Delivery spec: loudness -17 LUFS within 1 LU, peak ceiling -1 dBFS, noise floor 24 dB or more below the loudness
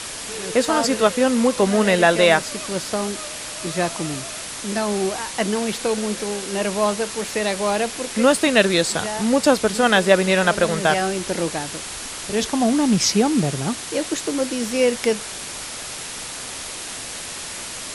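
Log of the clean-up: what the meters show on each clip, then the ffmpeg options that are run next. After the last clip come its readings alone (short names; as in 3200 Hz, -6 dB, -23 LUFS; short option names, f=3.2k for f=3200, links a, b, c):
noise floor -32 dBFS; noise floor target -45 dBFS; loudness -21.0 LUFS; peak -2.0 dBFS; loudness target -17.0 LUFS
-> -af "afftdn=nr=13:nf=-32"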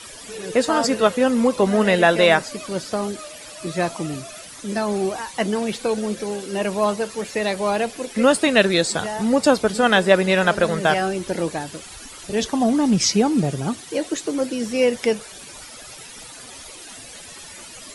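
noise floor -40 dBFS; noise floor target -45 dBFS
-> -af "afftdn=nr=6:nf=-40"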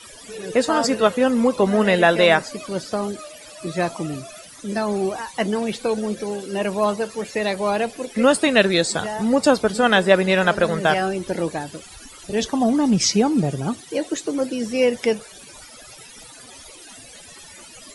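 noise floor -43 dBFS; noise floor target -45 dBFS
-> -af "afftdn=nr=6:nf=-43"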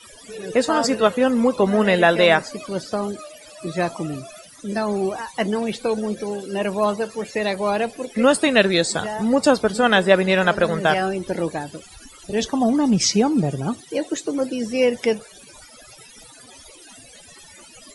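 noise floor -46 dBFS; loudness -20.5 LUFS; peak -2.5 dBFS; loudness target -17.0 LUFS
-> -af "volume=3.5dB,alimiter=limit=-1dB:level=0:latency=1"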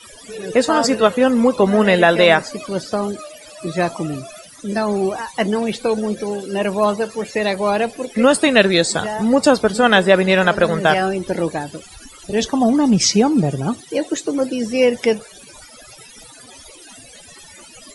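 loudness -17.0 LUFS; peak -1.0 dBFS; noise floor -42 dBFS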